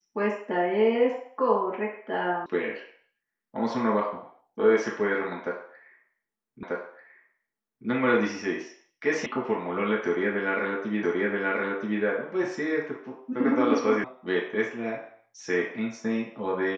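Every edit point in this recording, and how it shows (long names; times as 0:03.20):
0:02.46: cut off before it has died away
0:06.63: the same again, the last 1.24 s
0:09.26: cut off before it has died away
0:11.03: the same again, the last 0.98 s
0:14.04: cut off before it has died away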